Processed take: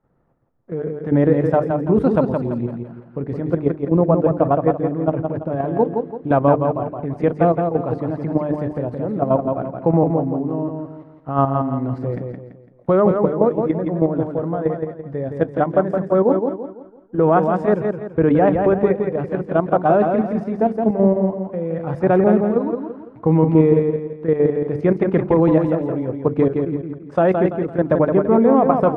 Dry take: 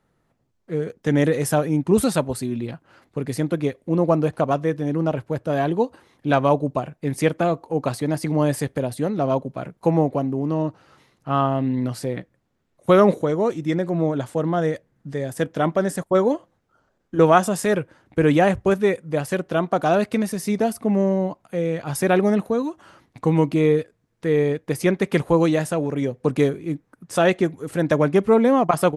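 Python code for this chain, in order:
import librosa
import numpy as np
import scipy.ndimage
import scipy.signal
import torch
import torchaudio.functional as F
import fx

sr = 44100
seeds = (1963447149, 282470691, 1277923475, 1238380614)

p1 = fx.block_float(x, sr, bits=7)
p2 = scipy.signal.sosfilt(scipy.signal.butter(2, 1100.0, 'lowpass', fs=sr, output='sos'), p1)
p3 = fx.hum_notches(p2, sr, base_hz=50, count=9)
p4 = fx.level_steps(p3, sr, step_db=10)
p5 = p4 + fx.echo_feedback(p4, sr, ms=168, feedback_pct=37, wet_db=-5, dry=0)
y = F.gain(torch.from_numpy(p5), 6.5).numpy()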